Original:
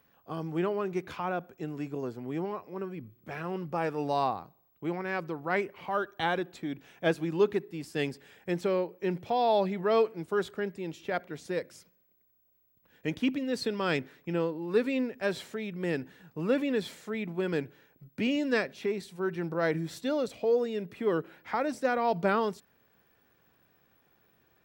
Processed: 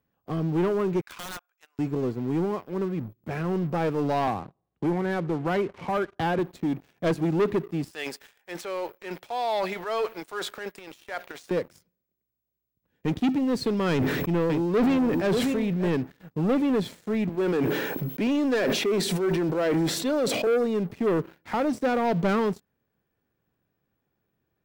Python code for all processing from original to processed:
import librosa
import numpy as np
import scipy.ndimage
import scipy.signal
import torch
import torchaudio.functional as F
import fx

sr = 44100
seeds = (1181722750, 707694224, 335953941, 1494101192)

y = fx.chain(x, sr, fx.highpass(hz=1100.0, slope=24),
    fx.overflow_wrap(gain_db=34.0), at=(1.01, 1.79))
y = fx.chain(y, sr, fx.lowpass(hz=3100.0, slope=12),
    fx.band_squash(depth_pct=40), at=(4.27, 6.39))
y = fx.chain(y, sr, fx.highpass(hz=900.0, slope=12),
    fx.transient(attack_db=-4, sustain_db=10), at=(7.91, 11.51))
y = fx.chain(y, sr, fx.echo_single(ms=586, db=-12.0),
    fx.sustainer(db_per_s=29.0), at=(13.91, 15.89))
y = fx.chain(y, sr, fx.highpass(hz=280.0, slope=12),
    fx.sustainer(db_per_s=23.0), at=(17.29, 20.47))
y = fx.low_shelf(y, sr, hz=480.0, db=10.5)
y = fx.leveller(y, sr, passes=3)
y = y * 10.0 ** (-9.0 / 20.0)